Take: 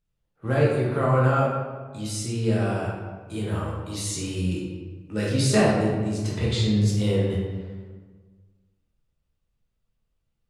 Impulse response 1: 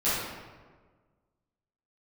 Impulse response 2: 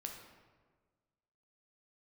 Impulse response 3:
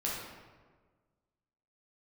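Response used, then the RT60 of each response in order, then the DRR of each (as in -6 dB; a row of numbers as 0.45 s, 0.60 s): 3; 1.5 s, 1.5 s, 1.5 s; -13.5 dB, 1.5 dB, -5.5 dB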